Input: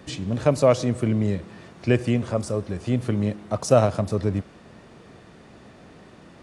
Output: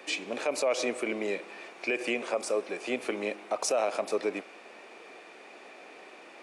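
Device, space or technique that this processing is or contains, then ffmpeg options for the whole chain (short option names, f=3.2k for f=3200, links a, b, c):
laptop speaker: -af "highpass=f=350:w=0.5412,highpass=f=350:w=1.3066,equalizer=f=780:t=o:w=0.26:g=4,equalizer=f=2.4k:t=o:w=0.32:g=12,alimiter=limit=-18.5dB:level=0:latency=1:release=69"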